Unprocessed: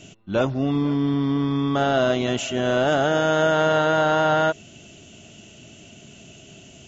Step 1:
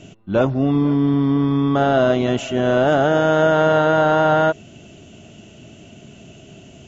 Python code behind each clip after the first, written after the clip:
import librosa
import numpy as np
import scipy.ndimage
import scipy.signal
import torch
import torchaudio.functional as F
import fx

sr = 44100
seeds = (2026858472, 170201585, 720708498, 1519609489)

y = fx.high_shelf(x, sr, hz=2300.0, db=-10.0)
y = y * librosa.db_to_amplitude(5.0)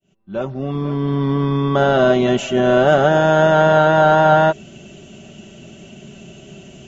y = fx.fade_in_head(x, sr, length_s=1.32)
y = y + 0.5 * np.pad(y, (int(5.2 * sr / 1000.0), 0))[:len(y)]
y = y * librosa.db_to_amplitude(2.0)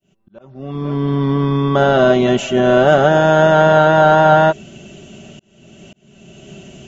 y = fx.auto_swell(x, sr, attack_ms=583.0)
y = y * librosa.db_to_amplitude(2.0)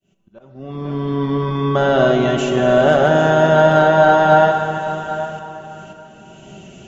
y = np.clip(x, -10.0 ** (-2.5 / 20.0), 10.0 ** (-2.5 / 20.0))
y = y + 10.0 ** (-14.5 / 20.0) * np.pad(y, (int(797 * sr / 1000.0), 0))[:len(y)]
y = fx.rev_plate(y, sr, seeds[0], rt60_s=3.7, hf_ratio=0.75, predelay_ms=0, drr_db=4.5)
y = y * librosa.db_to_amplitude(-3.0)